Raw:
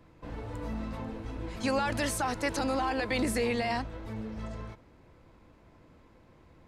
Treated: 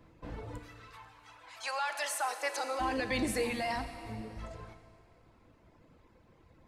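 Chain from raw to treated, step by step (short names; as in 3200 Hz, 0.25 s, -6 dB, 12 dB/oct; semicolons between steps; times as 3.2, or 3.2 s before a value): 0.58–2.79 HPF 1300 Hz -> 420 Hz 24 dB/oct; reverb removal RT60 1.4 s; Schroeder reverb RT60 2.5 s, combs from 27 ms, DRR 8 dB; gain -1.5 dB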